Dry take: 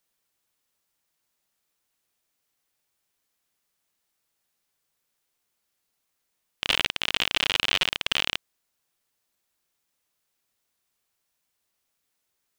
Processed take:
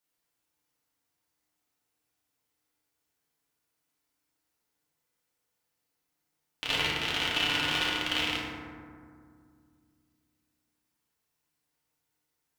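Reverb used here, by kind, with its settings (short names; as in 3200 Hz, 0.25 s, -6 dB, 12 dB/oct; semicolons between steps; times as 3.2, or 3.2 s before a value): FDN reverb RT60 2.1 s, low-frequency decay 1.5×, high-frequency decay 0.35×, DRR -6 dB; gain -8.5 dB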